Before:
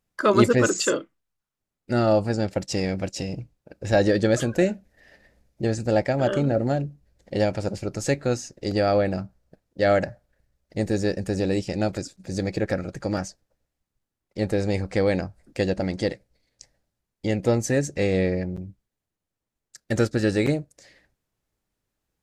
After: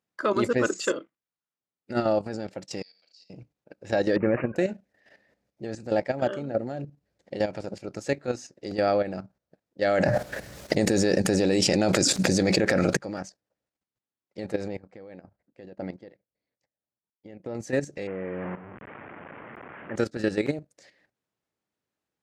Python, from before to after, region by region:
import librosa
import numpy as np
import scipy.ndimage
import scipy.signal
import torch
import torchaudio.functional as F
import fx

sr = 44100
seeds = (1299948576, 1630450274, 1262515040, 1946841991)

y = fx.chain(x, sr, fx.bandpass_q(hz=4500.0, q=16.0),
    fx.room_flutter(wall_m=6.2, rt60_s=0.39), at=(2.82, 3.3))
y = fx.chain(y, sr, fx.low_shelf(hz=460.0, db=5.0),
    fx.resample_bad(factor=8, down='none', up='filtered'), at=(4.16, 4.56))
y = fx.chain(y, sr, fx.high_shelf(hz=4700.0, db=7.0),
    fx.env_flatten(amount_pct=100), at=(9.82, 12.97))
y = fx.chain(y, sr, fx.lowpass(hz=1800.0, slope=6),
    fx.level_steps(step_db=13),
    fx.chopper(hz=1.8, depth_pct=60, duty_pct=35), at=(14.68, 17.55))
y = fx.chain(y, sr, fx.delta_mod(bps=16000, step_db=-26.0),
    fx.lowpass(hz=2100.0, slope=24),
    fx.low_shelf(hz=62.0, db=-7.5), at=(18.07, 19.96))
y = scipy.signal.sosfilt(scipy.signal.bessel(2, 190.0, 'highpass', norm='mag', fs=sr, output='sos'), y)
y = fx.high_shelf(y, sr, hz=7500.0, db=-10.5)
y = fx.level_steps(y, sr, step_db=11)